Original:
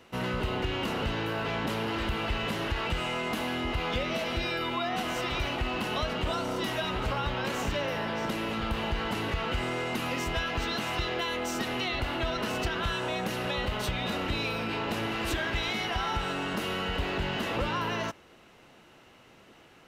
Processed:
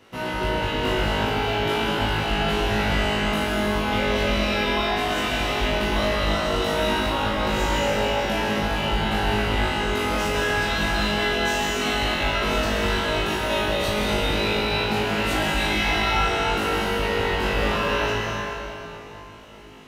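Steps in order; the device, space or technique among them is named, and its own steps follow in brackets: tunnel (flutter echo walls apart 3.3 m, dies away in 0.62 s; reverberation RT60 3.4 s, pre-delay 110 ms, DRR -2.5 dB)

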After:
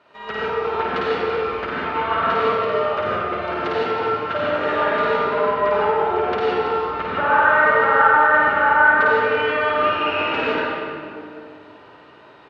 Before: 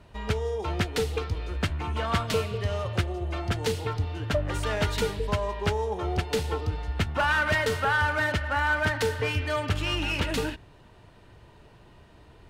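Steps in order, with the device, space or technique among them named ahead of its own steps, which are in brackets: low-pass that closes with the level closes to 1.5 kHz, closed at -22 dBFS; station announcement (band-pass 430–3800 Hz; peaking EQ 1.3 kHz +6 dB 0.29 oct; loudspeakers at several distances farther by 18 m -2 dB, 79 m -10 dB; reverberation RT60 2.5 s, pre-delay 75 ms, DRR -7 dB); trim +1 dB

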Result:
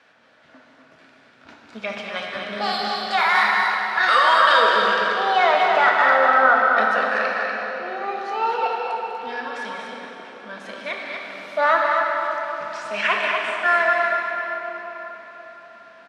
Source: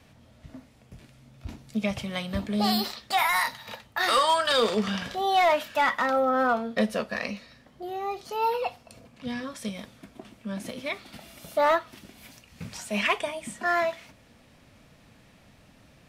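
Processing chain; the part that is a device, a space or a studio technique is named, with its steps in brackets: station announcement (band-pass 440–4500 Hz; peaking EQ 1.5 kHz +11 dB 0.47 oct; loudspeakers at several distances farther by 68 m -12 dB, 83 m -6 dB; reverberation RT60 4.7 s, pre-delay 24 ms, DRR 0 dB); trim +1.5 dB

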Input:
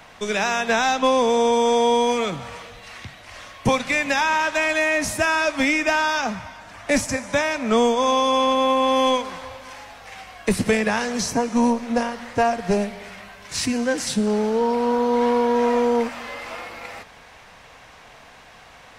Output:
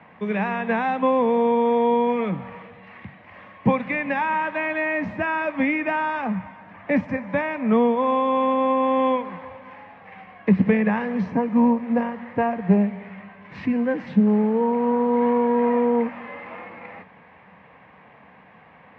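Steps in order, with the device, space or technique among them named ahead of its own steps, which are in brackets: bass cabinet (cabinet simulation 88–2100 Hz, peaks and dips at 110 Hz -5 dB, 190 Hz +9 dB, 380 Hz -3 dB, 670 Hz -5 dB, 1.4 kHz -9 dB)

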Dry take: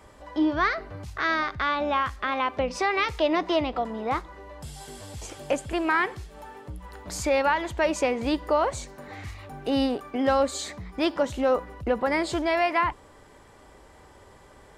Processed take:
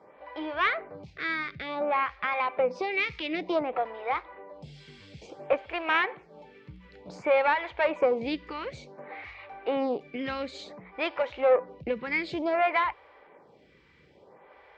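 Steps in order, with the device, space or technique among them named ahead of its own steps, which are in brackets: vibe pedal into a guitar amplifier (lamp-driven phase shifter 0.56 Hz; valve stage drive 16 dB, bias 0.7; cabinet simulation 99–4400 Hz, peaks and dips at 100 Hz -7 dB, 160 Hz +4 dB, 260 Hz -3 dB, 500 Hz +6 dB, 800 Hz +3 dB, 2.3 kHz +10 dB); trim +1.5 dB

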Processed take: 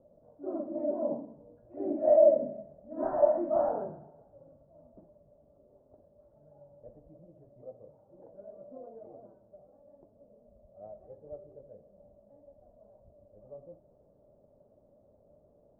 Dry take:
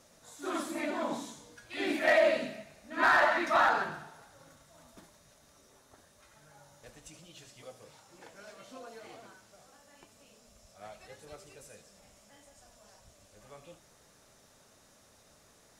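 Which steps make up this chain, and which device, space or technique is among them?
2.61–3.88 s: doubling 26 ms -6.5 dB; under water (low-pass 640 Hz 24 dB/octave; peaking EQ 590 Hz +10.5 dB 0.28 oct)

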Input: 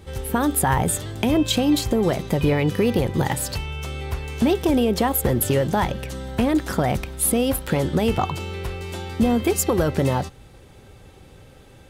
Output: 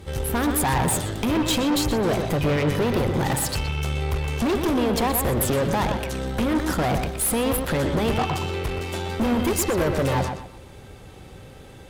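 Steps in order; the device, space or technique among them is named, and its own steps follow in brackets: rockabilly slapback (valve stage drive 25 dB, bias 0.55; tape echo 122 ms, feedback 31%, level -4.5 dB, low-pass 2.7 kHz); trim +5.5 dB

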